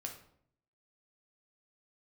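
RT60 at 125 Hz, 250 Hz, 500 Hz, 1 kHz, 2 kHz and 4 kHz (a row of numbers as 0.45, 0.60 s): 0.90, 0.80, 0.70, 0.60, 0.50, 0.45 s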